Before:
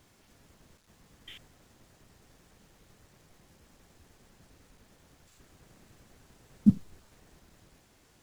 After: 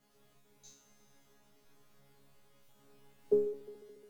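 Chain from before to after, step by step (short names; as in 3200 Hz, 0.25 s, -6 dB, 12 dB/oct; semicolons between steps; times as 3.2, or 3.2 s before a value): wide varispeed 2.01×; resonator bank C#3 fifth, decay 0.54 s; multi-head echo 71 ms, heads second and third, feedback 70%, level -18.5 dB; gain +8 dB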